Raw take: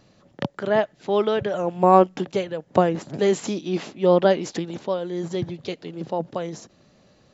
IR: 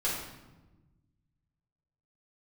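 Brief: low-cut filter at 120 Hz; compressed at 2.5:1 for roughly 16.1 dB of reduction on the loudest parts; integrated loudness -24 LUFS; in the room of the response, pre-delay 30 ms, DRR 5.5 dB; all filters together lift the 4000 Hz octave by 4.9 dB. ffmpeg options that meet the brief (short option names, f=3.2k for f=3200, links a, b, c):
-filter_complex "[0:a]highpass=120,equalizer=f=4k:t=o:g=6.5,acompressor=threshold=-35dB:ratio=2.5,asplit=2[a][b];[1:a]atrim=start_sample=2205,adelay=30[c];[b][c]afir=irnorm=-1:irlink=0,volume=-13dB[d];[a][d]amix=inputs=2:normalize=0,volume=10dB"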